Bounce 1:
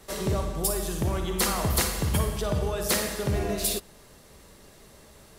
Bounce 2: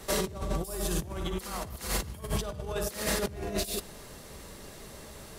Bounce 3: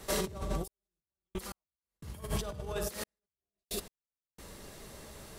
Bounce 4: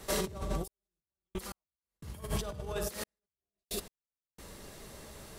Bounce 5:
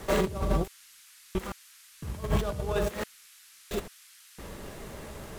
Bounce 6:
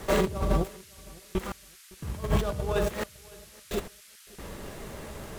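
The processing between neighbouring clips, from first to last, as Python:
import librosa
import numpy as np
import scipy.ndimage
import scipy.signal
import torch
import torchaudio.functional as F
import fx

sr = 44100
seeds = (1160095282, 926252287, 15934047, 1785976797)

y1 = fx.over_compress(x, sr, threshold_db=-32.0, ratio=-0.5)
y2 = fx.step_gate(y1, sr, bpm=89, pattern='xxxx....x...xx', floor_db=-60.0, edge_ms=4.5)
y2 = y2 * 10.0 ** (-3.0 / 20.0)
y3 = y2
y4 = scipy.signal.medfilt(y3, 9)
y4 = fx.dmg_noise_band(y4, sr, seeds[0], low_hz=1300.0, high_hz=13000.0, level_db=-63.0)
y4 = y4 * 10.0 ** (8.0 / 20.0)
y5 = fx.echo_feedback(y4, sr, ms=560, feedback_pct=25, wet_db=-23.5)
y5 = y5 * 10.0 ** (1.5 / 20.0)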